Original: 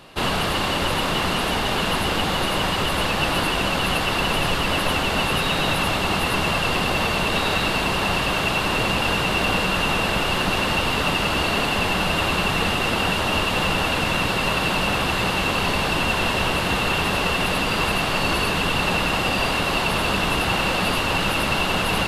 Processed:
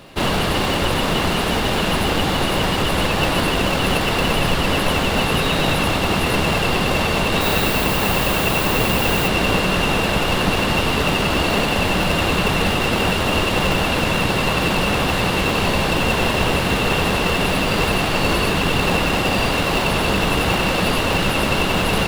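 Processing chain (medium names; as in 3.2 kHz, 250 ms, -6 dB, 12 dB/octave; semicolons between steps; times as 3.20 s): in parallel at -6 dB: sample-rate reducer 1.6 kHz, jitter 0%; 7.40–9.27 s: on the sum: added noise violet -30 dBFS; trim +1.5 dB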